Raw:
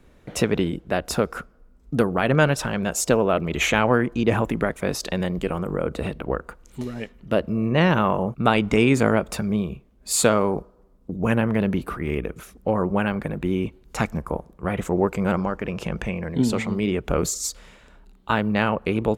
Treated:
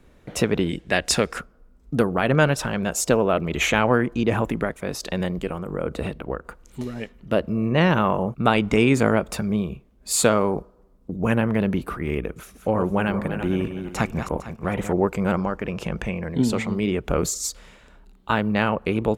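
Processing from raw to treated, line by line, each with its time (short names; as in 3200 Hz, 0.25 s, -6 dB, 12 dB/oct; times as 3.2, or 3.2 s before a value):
0.69–1.39 spectral gain 1600–10000 Hz +9 dB
4.27–6.45 tremolo triangle 1.3 Hz, depth 40%
12.3–14.93 regenerating reverse delay 0.227 s, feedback 45%, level -8.5 dB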